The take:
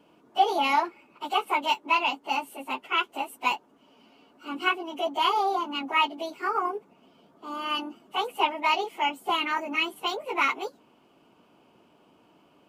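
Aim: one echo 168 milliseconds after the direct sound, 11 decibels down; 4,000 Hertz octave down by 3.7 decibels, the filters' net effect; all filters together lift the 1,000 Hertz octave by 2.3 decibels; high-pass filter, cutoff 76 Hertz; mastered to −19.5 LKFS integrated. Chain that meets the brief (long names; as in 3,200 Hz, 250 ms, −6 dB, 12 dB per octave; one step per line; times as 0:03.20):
high-pass filter 76 Hz
parametric band 1,000 Hz +3 dB
parametric band 4,000 Hz −6.5 dB
single-tap delay 168 ms −11 dB
level +6.5 dB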